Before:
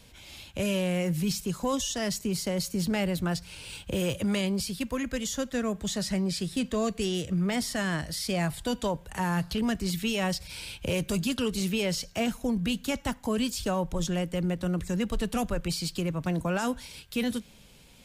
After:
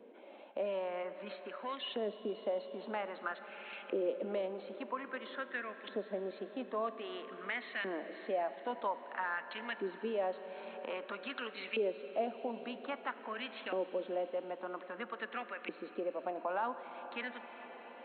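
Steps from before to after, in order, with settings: local Wiener filter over 9 samples; LFO band-pass saw up 0.51 Hz 400–2400 Hz; brick-wall FIR band-pass 200–4300 Hz; on a send at -11.5 dB: reverberation RT60 5.2 s, pre-delay 5 ms; on the sum: three bands compressed up and down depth 40%; trim +1.5 dB

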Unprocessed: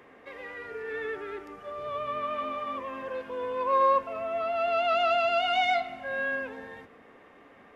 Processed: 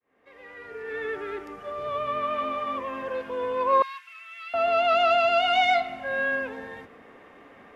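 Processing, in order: fade-in on the opening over 1.26 s; 3.82–4.54 s: inverse Chebyshev high-pass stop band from 540 Hz, stop band 60 dB; trim +4 dB

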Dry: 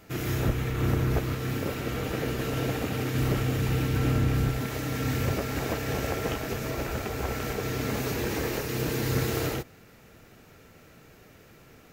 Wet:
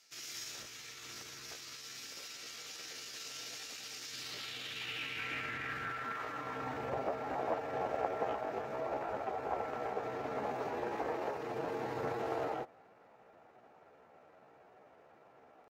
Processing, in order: band-pass sweep 5.4 kHz -> 780 Hz, 3.08–5.26 s; tempo 0.76×; trim +3 dB

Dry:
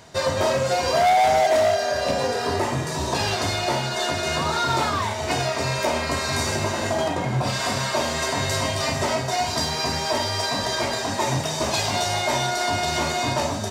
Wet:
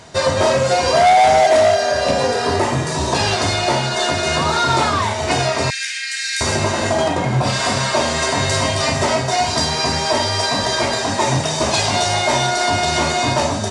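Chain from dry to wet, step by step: 5.70–6.41 s: Chebyshev high-pass 1.6 kHz, order 6; trim +6.5 dB; MP3 96 kbps 24 kHz

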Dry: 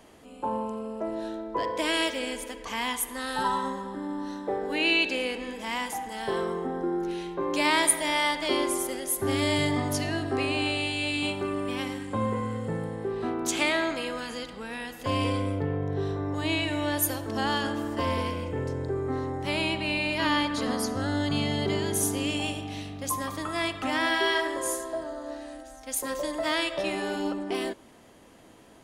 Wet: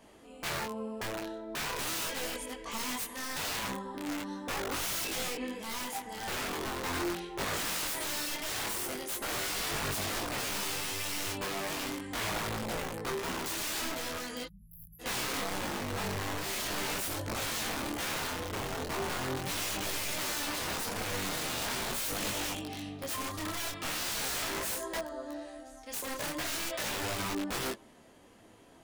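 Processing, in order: integer overflow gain 26 dB; spectral selection erased 14.46–15.00 s, 210–11000 Hz; detune thickener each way 14 cents

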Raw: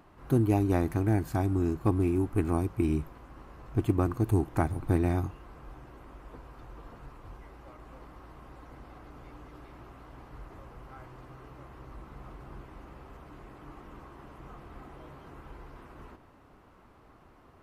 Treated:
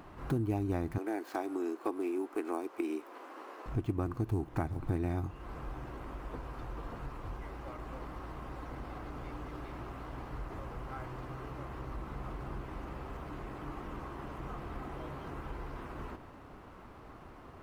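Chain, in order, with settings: median filter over 5 samples; 0.98–3.66 s: inverse Chebyshev high-pass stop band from 160 Hz, stop band 40 dB; compression 2.5:1, threshold -42 dBFS, peak gain reduction 15 dB; trim +6 dB

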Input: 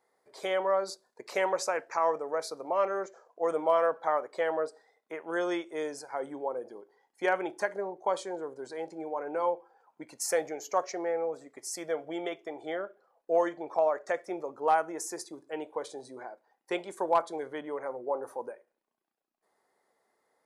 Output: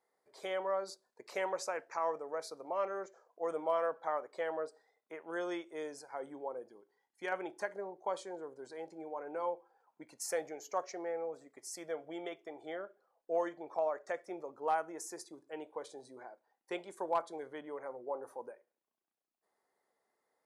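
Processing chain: 6.64–7.32 s: peaking EQ 610 Hz -6.5 dB 1.7 oct; trim -7.5 dB

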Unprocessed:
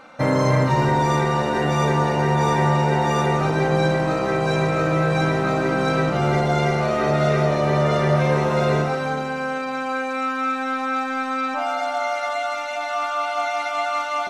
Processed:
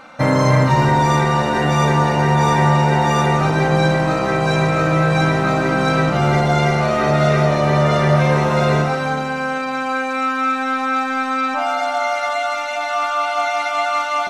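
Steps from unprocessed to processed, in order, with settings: peaking EQ 420 Hz -4.5 dB 0.84 oct; trim +5 dB

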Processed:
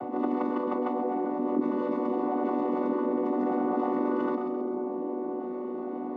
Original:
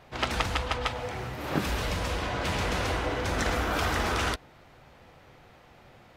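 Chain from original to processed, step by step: vocoder on a held chord minor triad, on B3; Savitzky-Golay filter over 65 samples; bass shelf 280 Hz +8.5 dB; on a send: two-band feedback delay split 840 Hz, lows 519 ms, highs 132 ms, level -14 dB; on the sum: level flattener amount 70%; trim -7.5 dB

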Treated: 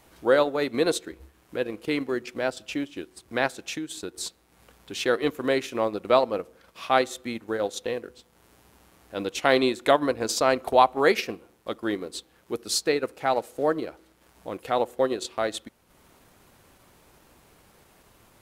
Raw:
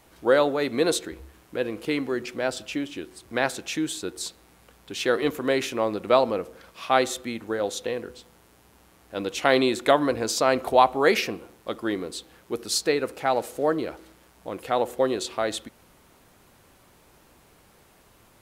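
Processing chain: 3.67–4.14 s: compression 10:1, threshold -29 dBFS, peak gain reduction 7.5 dB; transient shaper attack -1 dB, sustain -8 dB

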